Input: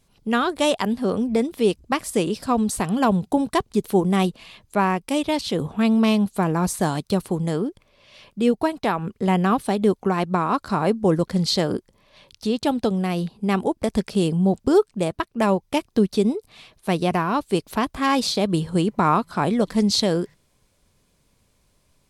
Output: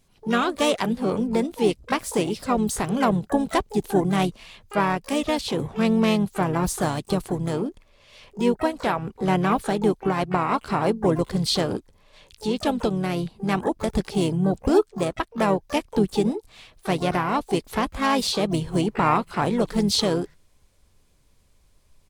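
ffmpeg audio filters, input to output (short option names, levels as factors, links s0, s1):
-filter_complex "[0:a]asplit=3[s0][s1][s2];[s1]asetrate=35002,aresample=44100,atempo=1.25992,volume=0.355[s3];[s2]asetrate=88200,aresample=44100,atempo=0.5,volume=0.2[s4];[s0][s3][s4]amix=inputs=3:normalize=0,asubboost=boost=2.5:cutoff=82,volume=0.841"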